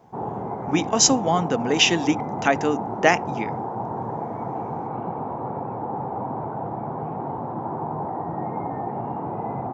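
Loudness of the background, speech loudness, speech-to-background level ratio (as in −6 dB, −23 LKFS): −30.0 LKFS, −21.0 LKFS, 9.0 dB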